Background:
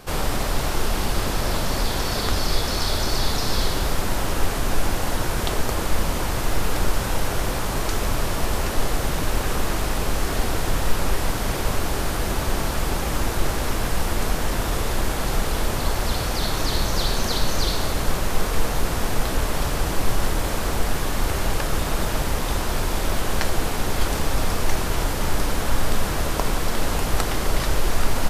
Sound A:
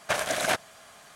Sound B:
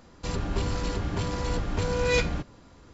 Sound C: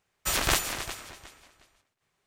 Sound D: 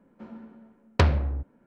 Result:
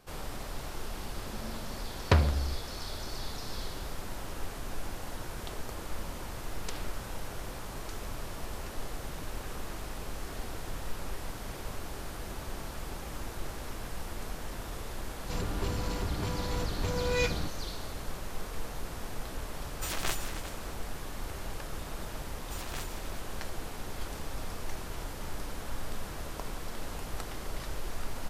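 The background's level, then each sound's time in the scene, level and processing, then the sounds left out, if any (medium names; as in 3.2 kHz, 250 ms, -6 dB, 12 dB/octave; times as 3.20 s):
background -16 dB
1.12 s: add D -3 dB
5.69 s: add D -11.5 dB + spectrum-flattening compressor 10:1
15.06 s: add B -5 dB
19.56 s: add C -9.5 dB
22.25 s: add C -17.5 dB
not used: A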